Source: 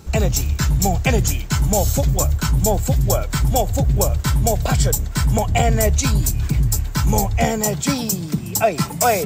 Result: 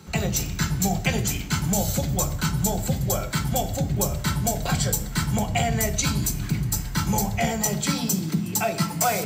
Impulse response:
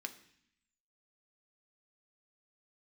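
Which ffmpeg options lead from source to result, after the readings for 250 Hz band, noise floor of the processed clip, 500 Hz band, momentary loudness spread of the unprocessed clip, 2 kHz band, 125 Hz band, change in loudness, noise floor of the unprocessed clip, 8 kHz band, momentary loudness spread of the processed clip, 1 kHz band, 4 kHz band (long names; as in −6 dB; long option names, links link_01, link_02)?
−2.5 dB, −32 dBFS, −8.0 dB, 3 LU, −3.0 dB, −6.5 dB, −5.5 dB, −28 dBFS, −3.0 dB, 3 LU, −5.5 dB, −2.5 dB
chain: -filter_complex "[0:a]acrossover=split=140|3000[link_01][link_02][link_03];[link_02]acompressor=threshold=-24dB:ratio=2[link_04];[link_01][link_04][link_03]amix=inputs=3:normalize=0[link_05];[1:a]atrim=start_sample=2205,asetrate=36603,aresample=44100[link_06];[link_05][link_06]afir=irnorm=-1:irlink=0"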